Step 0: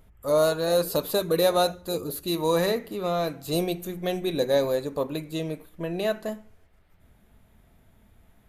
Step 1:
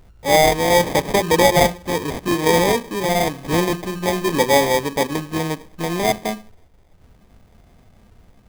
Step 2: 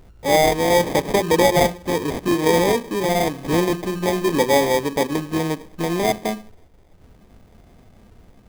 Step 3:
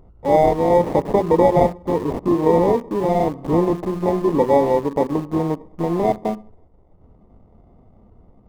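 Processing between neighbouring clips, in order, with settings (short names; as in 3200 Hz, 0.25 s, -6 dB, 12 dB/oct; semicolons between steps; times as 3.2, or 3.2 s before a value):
sample-rate reducer 1400 Hz, jitter 0%; gain +7.5 dB
bell 340 Hz +4 dB 1.5 oct; in parallel at -1 dB: compressor, threshold -23 dBFS, peak gain reduction 14.5 dB; on the sum: gain -5 dB
polynomial smoothing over 65 samples; in parallel at -8 dB: sample gate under -26 dBFS; on the sum: gain -1 dB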